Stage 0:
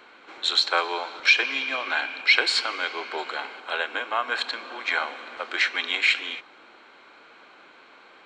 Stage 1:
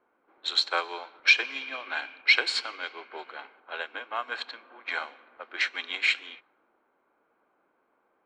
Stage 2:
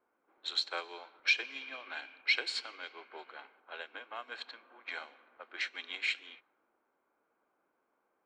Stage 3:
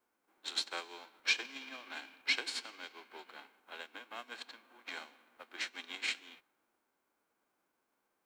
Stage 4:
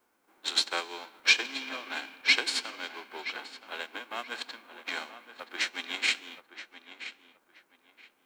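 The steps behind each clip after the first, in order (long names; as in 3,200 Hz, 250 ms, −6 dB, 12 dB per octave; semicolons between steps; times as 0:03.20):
low-pass that shuts in the quiet parts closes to 930 Hz, open at −20 dBFS; expander for the loud parts 1.5 to 1, over −43 dBFS; level −1 dB
dynamic equaliser 1,100 Hz, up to −5 dB, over −38 dBFS, Q 0.99; level −7.5 dB
spectral envelope flattened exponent 0.6; level −3 dB
feedback echo with a low-pass in the loop 975 ms, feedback 25%, low-pass 3,300 Hz, level −12 dB; level +9 dB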